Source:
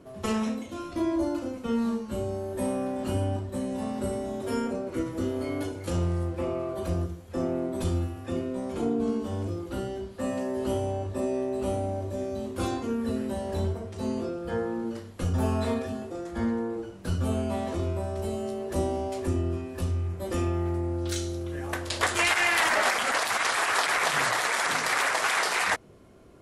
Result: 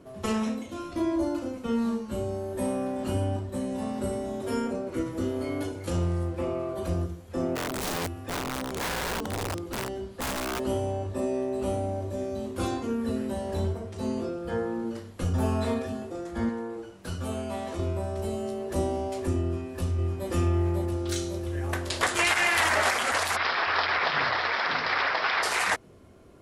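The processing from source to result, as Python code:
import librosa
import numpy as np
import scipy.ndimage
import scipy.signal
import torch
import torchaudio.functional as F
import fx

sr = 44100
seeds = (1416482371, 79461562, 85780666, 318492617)

y = fx.overflow_wrap(x, sr, gain_db=25.5, at=(7.55, 10.58), fade=0.02)
y = fx.low_shelf(y, sr, hz=430.0, db=-7.0, at=(16.49, 17.79))
y = fx.echo_throw(y, sr, start_s=19.43, length_s=0.87, ms=550, feedback_pct=70, wet_db=-3.5)
y = fx.cheby1_lowpass(y, sr, hz=5200.0, order=6, at=(23.35, 25.42), fade=0.02)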